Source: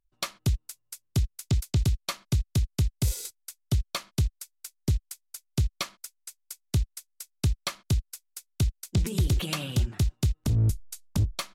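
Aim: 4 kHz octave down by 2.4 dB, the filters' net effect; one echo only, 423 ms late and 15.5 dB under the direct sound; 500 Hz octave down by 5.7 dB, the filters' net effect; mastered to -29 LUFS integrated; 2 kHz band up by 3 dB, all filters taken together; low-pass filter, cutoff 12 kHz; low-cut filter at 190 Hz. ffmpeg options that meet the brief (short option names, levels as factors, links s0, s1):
-af "highpass=190,lowpass=12000,equalizer=f=500:t=o:g=-8,equalizer=f=2000:t=o:g=5.5,equalizer=f=4000:t=o:g=-4.5,aecho=1:1:423:0.168,volume=2.51"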